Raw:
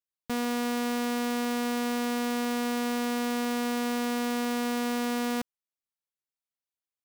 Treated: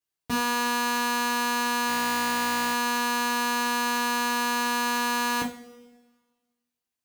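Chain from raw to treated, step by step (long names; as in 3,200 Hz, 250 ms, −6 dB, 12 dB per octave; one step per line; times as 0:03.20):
coupled-rooms reverb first 0.32 s, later 1.5 s, from −21 dB, DRR −5.5 dB
0:01.89–0:02.74: bad sample-rate conversion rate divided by 4×, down none, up hold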